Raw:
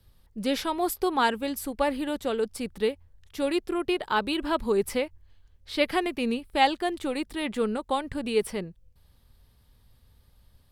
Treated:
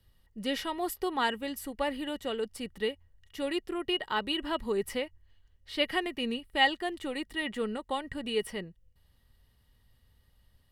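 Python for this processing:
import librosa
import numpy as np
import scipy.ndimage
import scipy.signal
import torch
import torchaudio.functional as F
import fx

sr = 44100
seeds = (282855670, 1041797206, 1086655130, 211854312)

y = fx.small_body(x, sr, hz=(1900.0, 2900.0), ring_ms=45, db=15)
y = y * 10.0 ** (-6.0 / 20.0)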